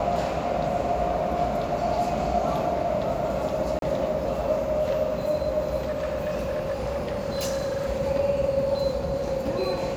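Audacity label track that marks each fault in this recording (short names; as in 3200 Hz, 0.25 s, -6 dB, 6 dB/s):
3.790000	3.820000	gap 32 ms
5.870000	7.900000	clipped -24 dBFS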